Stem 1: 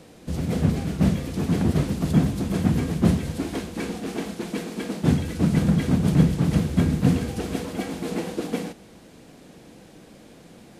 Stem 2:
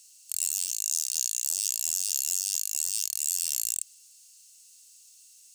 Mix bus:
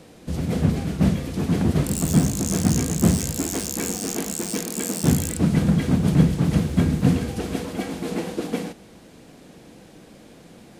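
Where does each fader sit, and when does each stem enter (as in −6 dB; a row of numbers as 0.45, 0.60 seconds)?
+1.0, −2.0 decibels; 0.00, 1.55 seconds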